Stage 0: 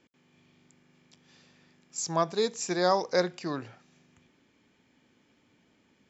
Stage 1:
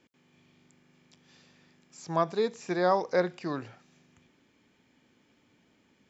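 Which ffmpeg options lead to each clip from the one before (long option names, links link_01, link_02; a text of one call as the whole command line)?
ffmpeg -i in.wav -filter_complex "[0:a]acrossover=split=3300[link_01][link_02];[link_02]acompressor=threshold=-52dB:ratio=4:attack=1:release=60[link_03];[link_01][link_03]amix=inputs=2:normalize=0" out.wav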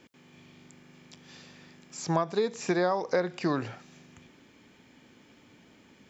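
ffmpeg -i in.wav -af "acompressor=threshold=-32dB:ratio=10,volume=9dB" out.wav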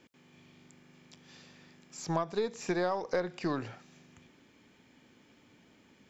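ffmpeg -i in.wav -af "aeval=exprs='0.237*(cos(1*acos(clip(val(0)/0.237,-1,1)))-cos(1*PI/2))+0.00473*(cos(8*acos(clip(val(0)/0.237,-1,1)))-cos(8*PI/2))':channel_layout=same,volume=-4.5dB" out.wav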